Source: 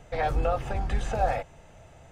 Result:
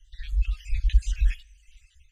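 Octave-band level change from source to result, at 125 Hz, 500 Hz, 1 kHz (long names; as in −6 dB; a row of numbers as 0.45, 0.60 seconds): +3.0 dB, below −40 dB, −38.0 dB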